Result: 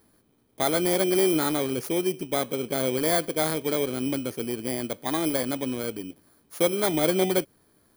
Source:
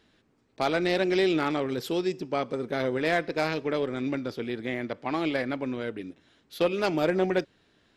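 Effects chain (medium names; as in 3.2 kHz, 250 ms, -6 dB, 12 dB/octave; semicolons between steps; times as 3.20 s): bit-reversed sample order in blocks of 16 samples; trim +2 dB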